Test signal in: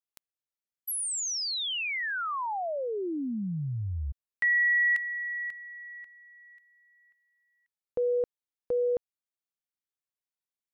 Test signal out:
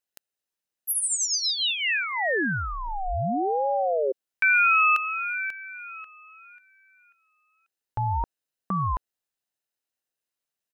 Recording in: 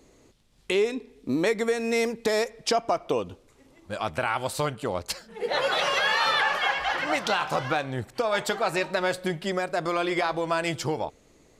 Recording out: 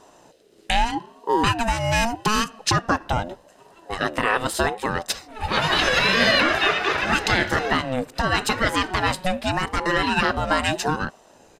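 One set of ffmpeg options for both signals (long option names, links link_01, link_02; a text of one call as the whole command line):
ffmpeg -i in.wav -af "aecho=1:1:0.9:0.42,aeval=exprs='val(0)*sin(2*PI*530*n/s+530*0.3/0.81*sin(2*PI*0.81*n/s))':channel_layout=same,volume=8dB" out.wav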